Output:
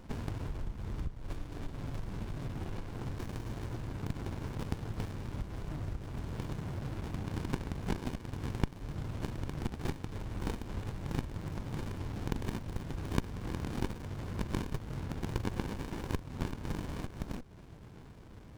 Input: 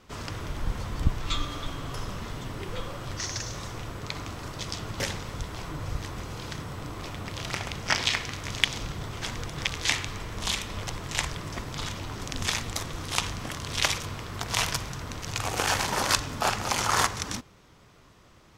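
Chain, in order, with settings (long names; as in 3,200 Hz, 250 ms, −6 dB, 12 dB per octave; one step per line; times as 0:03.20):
downward compressor 12 to 1, threshold −40 dBFS, peak gain reduction 24.5 dB
windowed peak hold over 65 samples
level +7 dB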